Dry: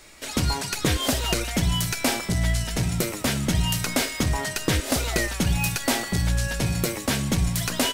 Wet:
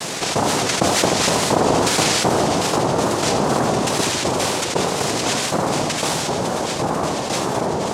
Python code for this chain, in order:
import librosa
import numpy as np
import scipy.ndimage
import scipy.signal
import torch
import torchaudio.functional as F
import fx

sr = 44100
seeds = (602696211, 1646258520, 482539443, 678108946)

y = fx.spec_ripple(x, sr, per_octave=0.58, drift_hz=0.59, depth_db=9)
y = fx.doppler_pass(y, sr, speed_mps=21, closest_m=18.0, pass_at_s=1.68)
y = scipy.signal.sosfilt(scipy.signal.butter(2, 2900.0, 'lowpass', fs=sr, output='sos'), y)
y = y + 0.85 * np.pad(y, (int(6.6 * sr / 1000.0), 0))[:len(y)]
y = fx.noise_vocoder(y, sr, seeds[0], bands=2)
y = fx.echo_feedback(y, sr, ms=78, feedback_pct=54, wet_db=-9.0)
y = fx.wow_flutter(y, sr, seeds[1], rate_hz=2.1, depth_cents=110.0)
y = fx.env_flatten(y, sr, amount_pct=70)
y = y * 10.0 ** (2.0 / 20.0)